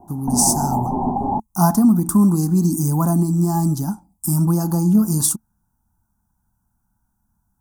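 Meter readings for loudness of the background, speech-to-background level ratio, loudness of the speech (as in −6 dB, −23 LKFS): −22.5 LKFS, 4.5 dB, −18.0 LKFS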